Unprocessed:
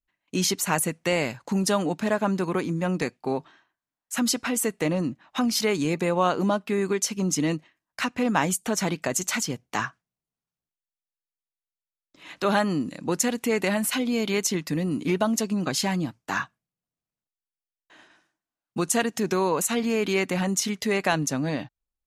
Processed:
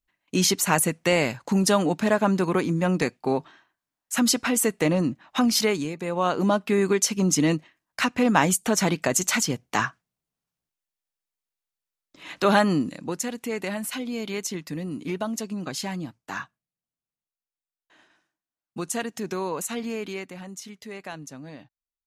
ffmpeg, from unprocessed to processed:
ffmpeg -i in.wav -af "volume=15.5dB,afade=type=out:start_time=5.59:duration=0.35:silence=0.251189,afade=type=in:start_time=5.94:duration=0.7:silence=0.237137,afade=type=out:start_time=12.74:duration=0.41:silence=0.354813,afade=type=out:start_time=19.87:duration=0.47:silence=0.375837" out.wav

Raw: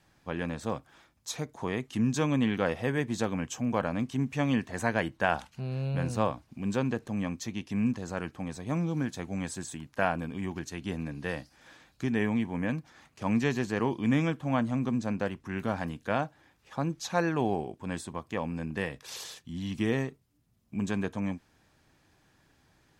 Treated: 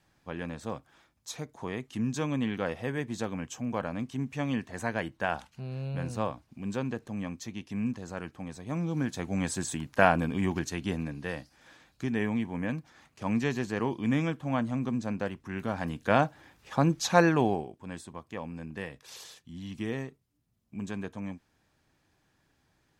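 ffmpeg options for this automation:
ffmpeg -i in.wav -af "volume=14dB,afade=type=in:start_time=8.69:duration=1.06:silence=0.334965,afade=type=out:start_time=10.51:duration=0.73:silence=0.421697,afade=type=in:start_time=15.74:duration=0.51:silence=0.398107,afade=type=out:start_time=17.2:duration=0.5:silence=0.251189" out.wav

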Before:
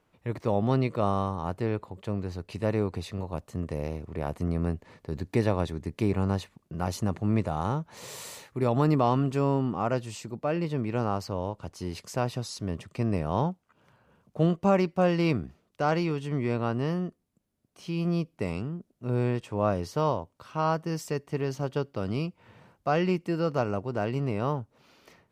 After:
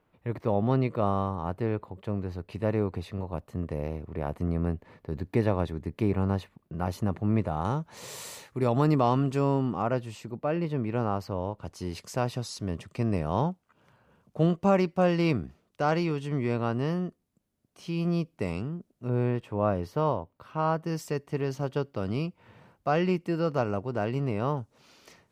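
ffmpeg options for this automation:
ffmpeg -i in.wav -af "asetnsamples=nb_out_samples=441:pad=0,asendcmd='7.65 equalizer g 0.5;9.82 equalizer g -8.5;11.65 equalizer g -0.5;19.08 equalizer g -12;20.83 equalizer g -2.5;24.57 equalizer g 7',equalizer=frequency=6900:width_type=o:width=1.7:gain=-10" out.wav

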